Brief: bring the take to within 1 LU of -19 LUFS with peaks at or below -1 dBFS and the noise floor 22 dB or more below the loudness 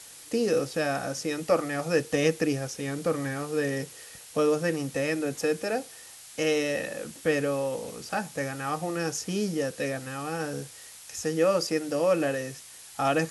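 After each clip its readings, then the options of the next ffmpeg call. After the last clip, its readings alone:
noise floor -47 dBFS; noise floor target -51 dBFS; loudness -28.5 LUFS; peak -11.0 dBFS; loudness target -19.0 LUFS
-> -af "afftdn=nr=6:nf=-47"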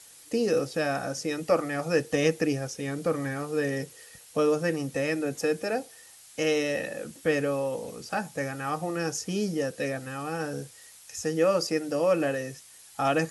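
noise floor -52 dBFS; loudness -28.5 LUFS; peak -11.0 dBFS; loudness target -19.0 LUFS
-> -af "volume=9.5dB"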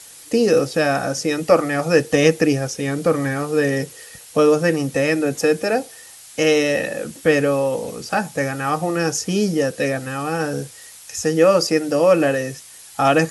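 loudness -19.0 LUFS; peak -1.5 dBFS; noise floor -42 dBFS

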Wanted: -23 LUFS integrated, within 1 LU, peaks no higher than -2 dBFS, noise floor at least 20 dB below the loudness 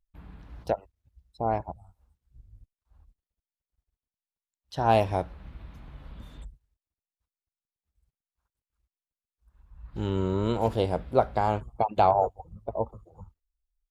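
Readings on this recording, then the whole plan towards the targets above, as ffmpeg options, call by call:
loudness -27.5 LUFS; peak -8.0 dBFS; loudness target -23.0 LUFS
-> -af "volume=4.5dB"

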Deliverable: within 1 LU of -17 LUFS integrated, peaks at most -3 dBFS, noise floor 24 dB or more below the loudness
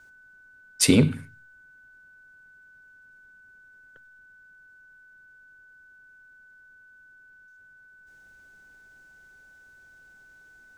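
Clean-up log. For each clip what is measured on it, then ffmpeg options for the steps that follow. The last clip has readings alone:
steady tone 1500 Hz; tone level -51 dBFS; loudness -21.5 LUFS; peak -5.0 dBFS; loudness target -17.0 LUFS
-> -af "bandreject=f=1.5k:w=30"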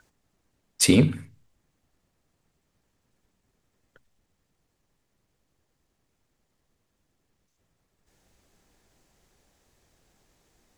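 steady tone none; loudness -20.5 LUFS; peak -5.0 dBFS; loudness target -17.0 LUFS
-> -af "volume=3.5dB,alimiter=limit=-3dB:level=0:latency=1"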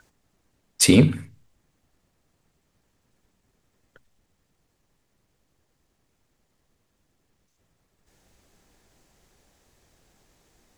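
loudness -17.5 LUFS; peak -3.0 dBFS; noise floor -72 dBFS

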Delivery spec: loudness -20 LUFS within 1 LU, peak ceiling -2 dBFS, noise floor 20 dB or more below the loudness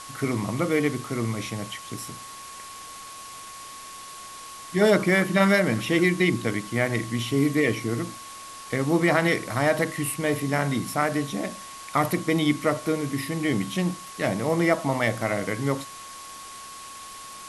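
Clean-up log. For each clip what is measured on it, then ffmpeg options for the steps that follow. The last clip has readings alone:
steady tone 1100 Hz; tone level -41 dBFS; noise floor -41 dBFS; noise floor target -45 dBFS; loudness -24.5 LUFS; peak -7.0 dBFS; loudness target -20.0 LUFS
-> -af "bandreject=f=1.1k:w=30"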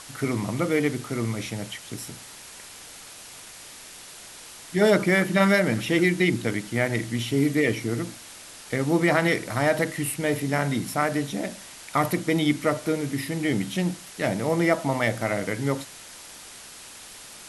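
steady tone none; noise floor -44 dBFS; noise floor target -45 dBFS
-> -af "afftdn=nr=6:nf=-44"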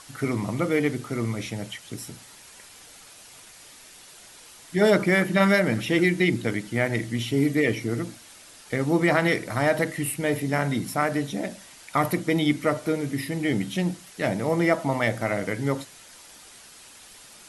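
noise floor -49 dBFS; loudness -24.5 LUFS; peak -7.5 dBFS; loudness target -20.0 LUFS
-> -af "volume=4.5dB"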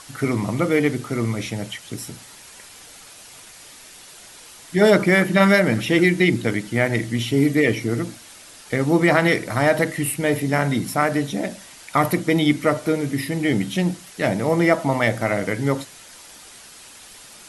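loudness -20.0 LUFS; peak -3.0 dBFS; noise floor -44 dBFS

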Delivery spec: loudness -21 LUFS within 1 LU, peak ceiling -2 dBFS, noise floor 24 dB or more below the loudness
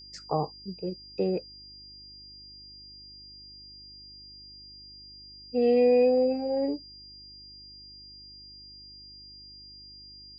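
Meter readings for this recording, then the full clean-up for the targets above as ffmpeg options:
hum 50 Hz; harmonics up to 350 Hz; hum level -56 dBFS; steady tone 4800 Hz; tone level -46 dBFS; loudness -26.5 LUFS; peak -13.5 dBFS; loudness target -21.0 LUFS
-> -af "bandreject=f=50:t=h:w=4,bandreject=f=100:t=h:w=4,bandreject=f=150:t=h:w=4,bandreject=f=200:t=h:w=4,bandreject=f=250:t=h:w=4,bandreject=f=300:t=h:w=4,bandreject=f=350:t=h:w=4"
-af "bandreject=f=4.8k:w=30"
-af "volume=5.5dB"

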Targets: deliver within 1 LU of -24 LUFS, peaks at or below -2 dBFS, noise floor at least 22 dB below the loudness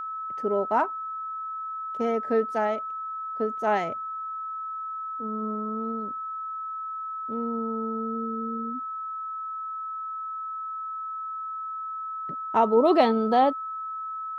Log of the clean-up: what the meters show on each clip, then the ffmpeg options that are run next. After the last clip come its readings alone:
steady tone 1300 Hz; tone level -31 dBFS; loudness -28.5 LUFS; peak -8.0 dBFS; loudness target -24.0 LUFS
-> -af "bandreject=f=1.3k:w=30"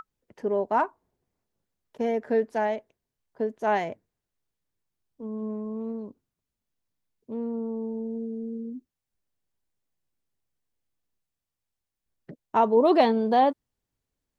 steady tone none; loudness -26.5 LUFS; peak -8.5 dBFS; loudness target -24.0 LUFS
-> -af "volume=2.5dB"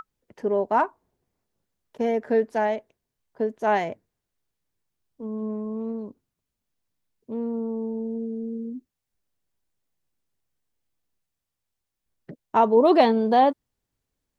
loudness -24.0 LUFS; peak -6.0 dBFS; noise floor -84 dBFS

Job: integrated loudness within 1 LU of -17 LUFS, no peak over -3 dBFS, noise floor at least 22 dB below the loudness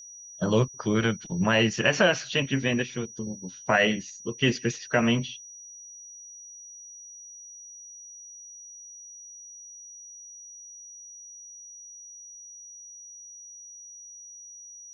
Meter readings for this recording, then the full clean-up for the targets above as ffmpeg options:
steady tone 5800 Hz; tone level -43 dBFS; loudness -25.5 LUFS; peak -7.5 dBFS; loudness target -17.0 LUFS
-> -af "bandreject=f=5.8k:w=30"
-af "volume=8.5dB,alimiter=limit=-3dB:level=0:latency=1"

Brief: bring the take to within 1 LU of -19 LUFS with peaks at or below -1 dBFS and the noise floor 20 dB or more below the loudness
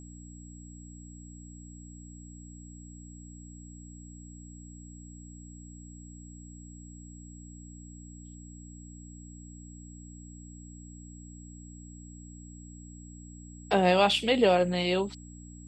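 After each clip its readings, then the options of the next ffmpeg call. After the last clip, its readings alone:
hum 60 Hz; harmonics up to 300 Hz; hum level -45 dBFS; steady tone 7700 Hz; tone level -53 dBFS; loudness -25.0 LUFS; peak -10.5 dBFS; loudness target -19.0 LUFS
-> -af "bandreject=f=60:t=h:w=4,bandreject=f=120:t=h:w=4,bandreject=f=180:t=h:w=4,bandreject=f=240:t=h:w=4,bandreject=f=300:t=h:w=4"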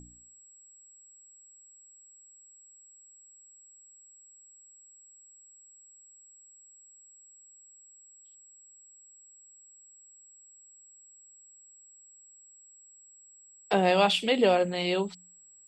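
hum none; steady tone 7700 Hz; tone level -53 dBFS
-> -af "bandreject=f=7.7k:w=30"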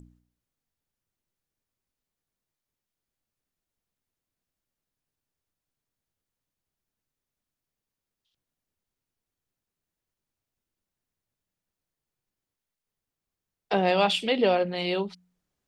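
steady tone none; loudness -25.0 LUFS; peak -11.0 dBFS; loudness target -19.0 LUFS
-> -af "volume=6dB"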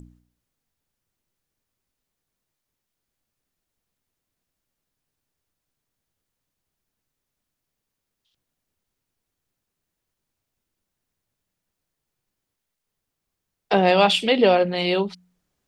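loudness -19.0 LUFS; peak -5.0 dBFS; noise floor -83 dBFS

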